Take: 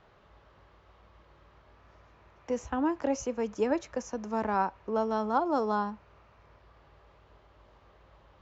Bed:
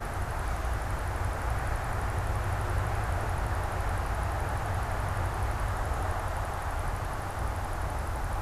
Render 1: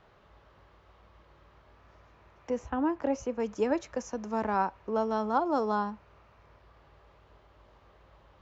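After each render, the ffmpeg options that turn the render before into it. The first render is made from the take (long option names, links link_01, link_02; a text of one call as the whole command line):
ffmpeg -i in.wav -filter_complex "[0:a]asettb=1/sr,asplit=3[link_01][link_02][link_03];[link_01]atrim=end=2.504[link_04];[link_02]atrim=start=2.5:end=3.4,asetpts=PTS-STARTPTS,afade=type=in:duration=0.004:curve=qsin,afade=type=out:start_time=0.896:duration=0.004:curve=qsin,highshelf=frequency=4500:gain=-11.5[link_05];[link_03]atrim=start=3.396[link_06];[link_04][link_05]acrossfade=duration=0.004:curve1=hsin:curve2=qsin[link_07];[link_07][link_06]acrossfade=duration=0.004:curve1=qsin:curve2=hsin" out.wav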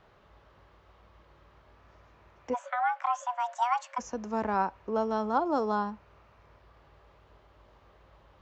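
ffmpeg -i in.wav -filter_complex "[0:a]asplit=3[link_01][link_02][link_03];[link_01]afade=type=out:start_time=2.53:duration=0.02[link_04];[link_02]afreqshift=490,afade=type=in:start_time=2.53:duration=0.02,afade=type=out:start_time=3.98:duration=0.02[link_05];[link_03]afade=type=in:start_time=3.98:duration=0.02[link_06];[link_04][link_05][link_06]amix=inputs=3:normalize=0" out.wav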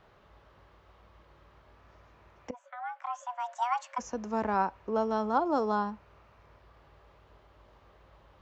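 ffmpeg -i in.wav -filter_complex "[0:a]asplit=2[link_01][link_02];[link_01]atrim=end=2.51,asetpts=PTS-STARTPTS,afade=type=out:start_time=2.506:duration=0.004:curve=hsin:silence=0.105925[link_03];[link_02]atrim=start=2.51,asetpts=PTS-STARTPTS,afade=type=in:duration=1.59:silence=0.105925[link_04];[link_03][link_04]concat=n=2:v=0:a=1" out.wav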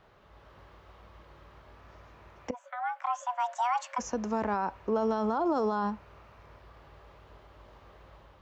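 ffmpeg -i in.wav -af "alimiter=level_in=2dB:limit=-24dB:level=0:latency=1:release=31,volume=-2dB,dynaudnorm=framelen=150:gausssize=5:maxgain=5dB" out.wav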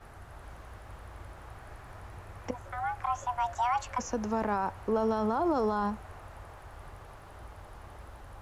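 ffmpeg -i in.wav -i bed.wav -filter_complex "[1:a]volume=-16.5dB[link_01];[0:a][link_01]amix=inputs=2:normalize=0" out.wav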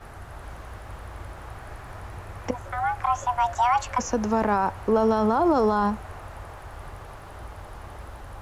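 ffmpeg -i in.wav -af "volume=7.5dB" out.wav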